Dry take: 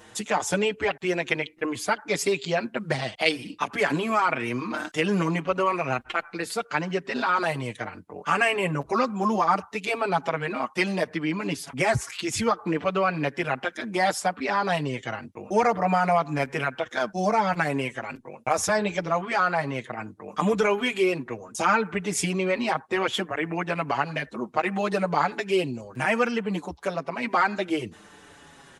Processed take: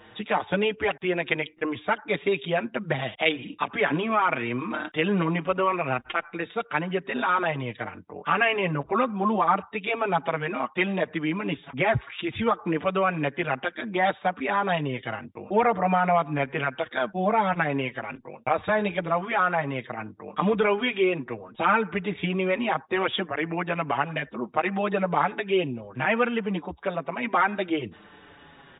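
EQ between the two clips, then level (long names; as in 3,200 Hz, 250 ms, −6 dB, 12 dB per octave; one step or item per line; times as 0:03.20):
linear-phase brick-wall low-pass 3,800 Hz
0.0 dB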